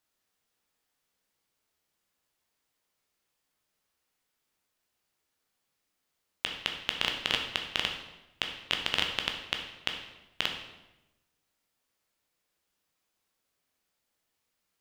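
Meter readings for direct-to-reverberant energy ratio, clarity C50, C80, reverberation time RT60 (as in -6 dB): 2.5 dB, 6.0 dB, 8.5 dB, 1.0 s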